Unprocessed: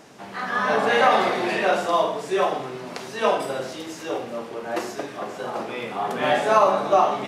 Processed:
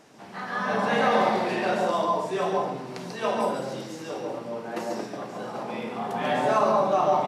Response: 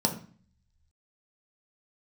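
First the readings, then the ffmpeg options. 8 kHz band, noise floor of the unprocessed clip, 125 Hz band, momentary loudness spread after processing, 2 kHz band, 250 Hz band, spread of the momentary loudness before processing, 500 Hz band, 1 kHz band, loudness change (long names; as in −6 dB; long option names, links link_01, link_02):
−5.0 dB, −38 dBFS, +1.5 dB, 14 LU, −5.5 dB, 0.0 dB, 15 LU, −3.0 dB, −3.5 dB, −3.5 dB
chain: -filter_complex "[0:a]asplit=2[link_01][link_02];[1:a]atrim=start_sample=2205,adelay=140[link_03];[link_02][link_03]afir=irnorm=-1:irlink=0,volume=-12dB[link_04];[link_01][link_04]amix=inputs=2:normalize=0,aresample=32000,aresample=44100,volume=-6.5dB"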